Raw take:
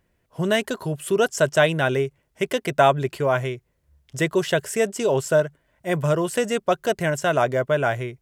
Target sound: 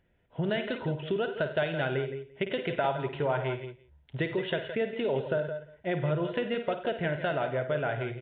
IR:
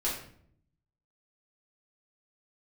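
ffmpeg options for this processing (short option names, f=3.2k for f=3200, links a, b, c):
-filter_complex "[0:a]asplit=2[a][b];[b]aecho=0:1:175:0.0794[c];[a][c]amix=inputs=2:normalize=0,aresample=8000,aresample=44100,acompressor=threshold=-26dB:ratio=4,bandreject=f=1.1k:w=5.5,asettb=1/sr,asplit=3[d][e][f];[d]atrim=end=2.844[g];[e]atrim=start=2.84:end=4.2,asetpts=PTS-STARTPTS,afade=t=in:d=0.004:c=qsin,afade=t=out:st=1.356:d=0.004:c=qsin,equalizer=f=930:t=o:w=0.49:g=8[h];[f]atrim=start=4.196[i];[g][h]acrossfade=d=0.004:c1=hsin:c2=qsin[j];[j][i]acrossfade=d=0.004:c1=qsin:c2=hsin,asplit=2[k][l];[l]aecho=0:1:53|87|101|165|167:0.316|0.158|0.141|0.106|0.282[m];[k][m]amix=inputs=2:normalize=0,volume=-1.5dB" -ar 11025 -c:a libmp3lame -b:a 32k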